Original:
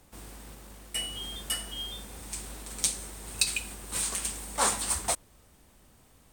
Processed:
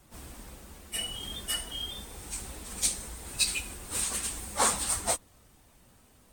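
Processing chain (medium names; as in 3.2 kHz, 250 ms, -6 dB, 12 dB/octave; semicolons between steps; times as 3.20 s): phase randomisation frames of 50 ms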